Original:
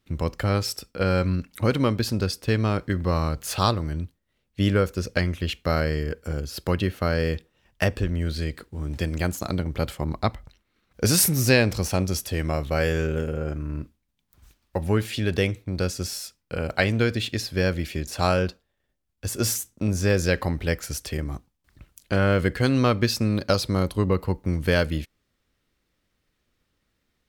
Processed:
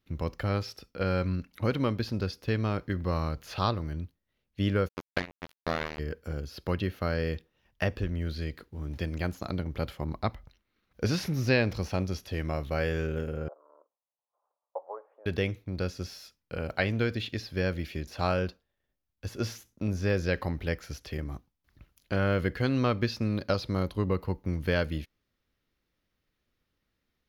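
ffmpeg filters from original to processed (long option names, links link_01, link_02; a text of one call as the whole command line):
ffmpeg -i in.wav -filter_complex "[0:a]asplit=3[link_01][link_02][link_03];[link_01]afade=type=out:start_time=4.87:duration=0.02[link_04];[link_02]acrusher=bits=2:mix=0:aa=0.5,afade=type=in:start_time=4.87:duration=0.02,afade=type=out:start_time=5.98:duration=0.02[link_05];[link_03]afade=type=in:start_time=5.98:duration=0.02[link_06];[link_04][link_05][link_06]amix=inputs=3:normalize=0,asettb=1/sr,asplit=3[link_07][link_08][link_09];[link_07]atrim=end=13.484[link_10];[link_08]atrim=start=13.48:end=15.26,asetpts=PTS-STARTPTS,afade=type=in:duration=0.004:curve=qsin,afade=type=out:start_time=1.776:duration=0.004:curve=qsin,asuperpass=centerf=750:order=8:qfactor=1.2[link_11];[link_09]atrim=start=15.256[link_12];[link_10][link_11]acrossfade=duration=0.004:curve1=hsin:curve2=qsin[link_13];[link_13][link_12]acrossfade=duration=0.004:curve1=qsin:curve2=hsin,acrossover=split=5000[link_14][link_15];[link_15]acompressor=threshold=-45dB:ratio=4:attack=1:release=60[link_16];[link_14][link_16]amix=inputs=2:normalize=0,equalizer=frequency=8200:width=3.4:gain=-13.5,volume=-6dB" out.wav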